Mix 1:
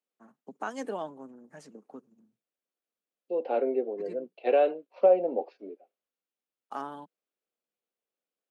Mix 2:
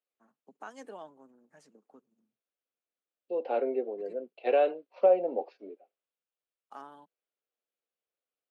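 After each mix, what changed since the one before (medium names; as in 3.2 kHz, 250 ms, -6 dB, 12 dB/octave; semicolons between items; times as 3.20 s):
first voice -8.5 dB; master: add bass shelf 350 Hz -6 dB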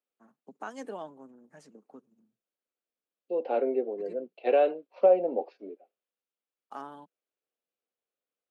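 first voice +4.0 dB; master: add bass shelf 350 Hz +6 dB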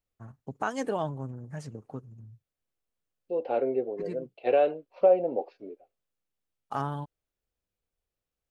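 first voice +9.0 dB; master: remove steep high-pass 190 Hz 48 dB/octave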